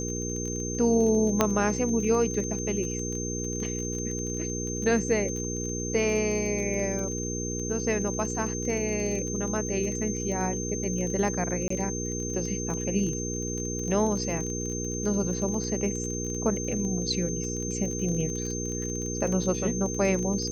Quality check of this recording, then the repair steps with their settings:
crackle 24 per s -32 dBFS
hum 60 Hz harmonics 8 -33 dBFS
whine 6.3 kHz -34 dBFS
1.41 s: pop -6 dBFS
11.68–11.70 s: dropout 24 ms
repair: de-click; band-stop 6.3 kHz, Q 30; de-hum 60 Hz, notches 8; interpolate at 11.68 s, 24 ms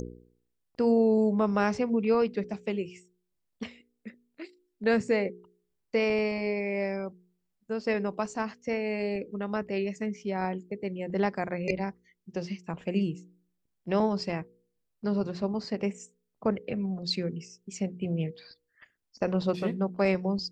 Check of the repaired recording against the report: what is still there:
nothing left

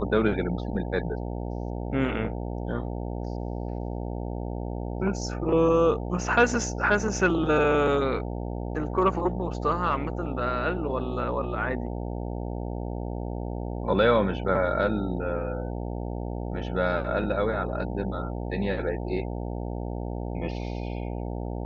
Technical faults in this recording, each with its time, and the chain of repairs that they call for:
buzz 60 Hz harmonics 15 -32 dBFS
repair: de-hum 60 Hz, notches 15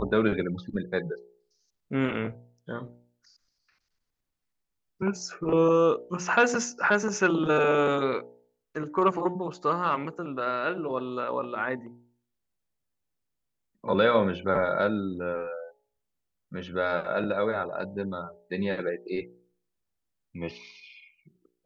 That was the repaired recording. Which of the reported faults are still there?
nothing left

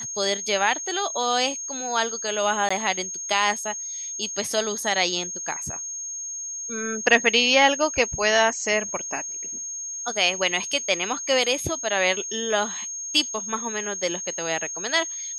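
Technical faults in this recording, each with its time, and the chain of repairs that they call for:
whine 6.5 kHz -30 dBFS
2.69–2.71 s: dropout 15 ms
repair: band-stop 6.5 kHz, Q 30; interpolate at 2.69 s, 15 ms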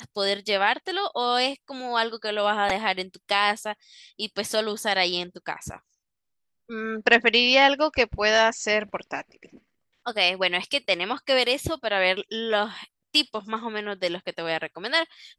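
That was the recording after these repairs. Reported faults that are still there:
nothing left

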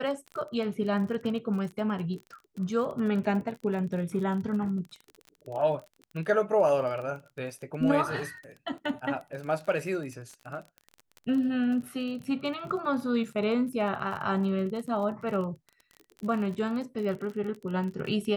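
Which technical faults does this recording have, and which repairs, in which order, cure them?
crackle 29 per s -36 dBFS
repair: de-click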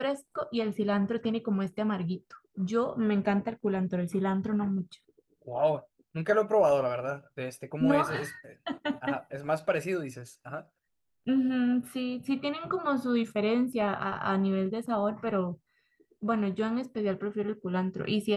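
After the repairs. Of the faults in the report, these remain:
nothing left

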